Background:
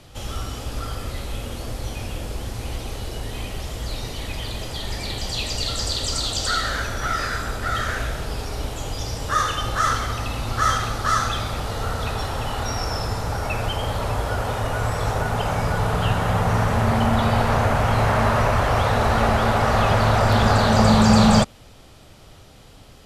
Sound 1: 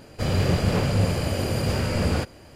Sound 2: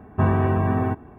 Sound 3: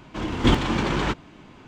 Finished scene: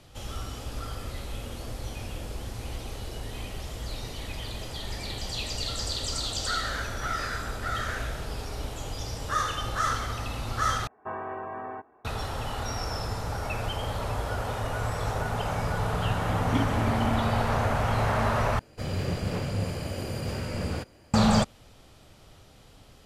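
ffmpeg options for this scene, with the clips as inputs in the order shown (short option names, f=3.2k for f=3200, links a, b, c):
-filter_complex "[0:a]volume=-6.5dB[a];[2:a]acrossover=split=420 2200:gain=0.0631 1 0.2[b][c][d];[b][c][d]amix=inputs=3:normalize=0[e];[3:a]asplit=3[f][g][h];[f]bandpass=f=270:t=q:w=8,volume=0dB[i];[g]bandpass=f=2.29k:t=q:w=8,volume=-6dB[j];[h]bandpass=f=3.01k:t=q:w=8,volume=-9dB[k];[i][j][k]amix=inputs=3:normalize=0[l];[a]asplit=3[m][n][o];[m]atrim=end=10.874[p];[e]atrim=end=1.18,asetpts=PTS-STARTPTS,volume=-7.5dB[q];[n]atrim=start=12.046:end=18.594[r];[1:a]atrim=end=2.55,asetpts=PTS-STARTPTS,volume=-8dB[s];[o]atrim=start=21.136[t];[l]atrim=end=1.67,asetpts=PTS-STARTPTS,volume=-2.5dB,afade=t=in:d=0.004:c=hsin,afade=t=out:st=1.666:d=0.004:c=hsin,adelay=16080[u];[p][q]acrossfade=d=0.004:c1=hsin:c2=hsin[v];[v][r]acrossfade=d=0.004:c1=hsin:c2=hsin[w];[w][s]acrossfade=d=0.004:c1=hsin:c2=hsin[x];[x][t]acrossfade=d=0.004:c1=hsin:c2=hsin[y];[y][u]amix=inputs=2:normalize=0"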